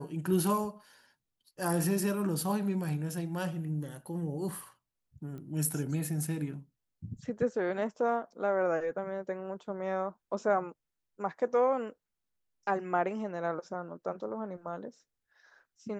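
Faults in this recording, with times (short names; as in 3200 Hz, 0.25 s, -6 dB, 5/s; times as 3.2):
5.38 pop -34 dBFS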